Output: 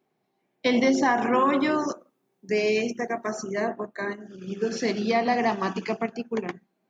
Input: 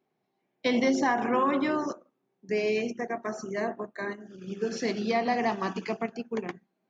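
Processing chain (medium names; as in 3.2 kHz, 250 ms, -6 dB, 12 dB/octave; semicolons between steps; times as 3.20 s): 1.14–3.43 s: treble shelf 4.9 kHz +7 dB; trim +3.5 dB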